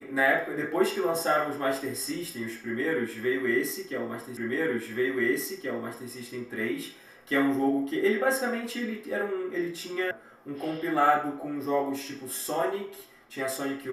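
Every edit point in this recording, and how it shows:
0:04.37: the same again, the last 1.73 s
0:10.11: cut off before it has died away

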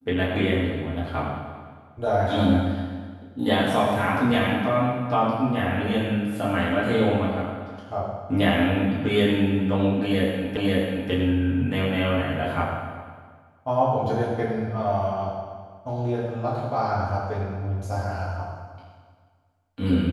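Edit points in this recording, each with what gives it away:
0:10.57: the same again, the last 0.54 s

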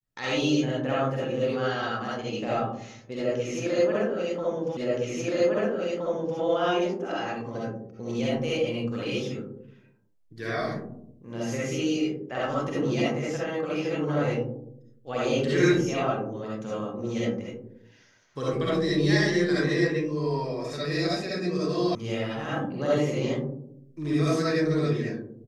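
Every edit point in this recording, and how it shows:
0:04.77: the same again, the last 1.62 s
0:21.95: cut off before it has died away

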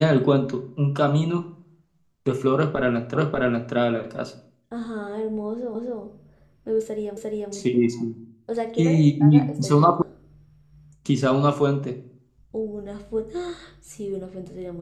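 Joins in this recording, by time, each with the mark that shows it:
0:03.15: the same again, the last 0.59 s
0:05.75: the same again, the last 0.25 s
0:07.17: the same again, the last 0.35 s
0:10.02: cut off before it has died away

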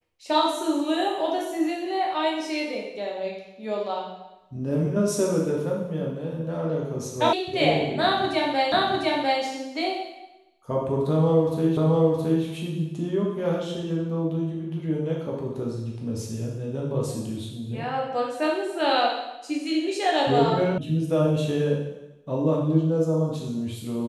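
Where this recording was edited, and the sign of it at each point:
0:07.33: cut off before it has died away
0:08.72: the same again, the last 0.7 s
0:11.77: the same again, the last 0.67 s
0:20.78: cut off before it has died away

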